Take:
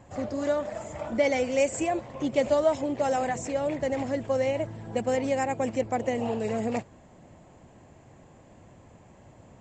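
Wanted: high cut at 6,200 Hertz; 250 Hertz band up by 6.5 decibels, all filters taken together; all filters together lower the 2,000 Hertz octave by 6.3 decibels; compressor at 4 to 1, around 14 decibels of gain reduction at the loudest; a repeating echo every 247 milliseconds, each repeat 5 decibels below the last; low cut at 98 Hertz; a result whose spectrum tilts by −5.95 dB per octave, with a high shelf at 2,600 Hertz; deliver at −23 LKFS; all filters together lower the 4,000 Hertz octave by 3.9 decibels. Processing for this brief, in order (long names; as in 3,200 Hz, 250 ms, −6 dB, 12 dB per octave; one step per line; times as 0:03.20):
high-pass filter 98 Hz
low-pass filter 6,200 Hz
parametric band 250 Hz +7.5 dB
parametric band 2,000 Hz −8 dB
high-shelf EQ 2,600 Hz +4 dB
parametric band 4,000 Hz −5 dB
downward compressor 4 to 1, threshold −35 dBFS
repeating echo 247 ms, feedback 56%, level −5 dB
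level +12.5 dB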